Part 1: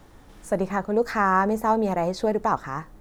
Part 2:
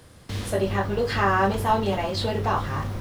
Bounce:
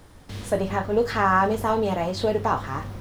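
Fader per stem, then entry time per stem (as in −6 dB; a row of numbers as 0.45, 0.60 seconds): −1.0, −5.0 decibels; 0.00, 0.00 seconds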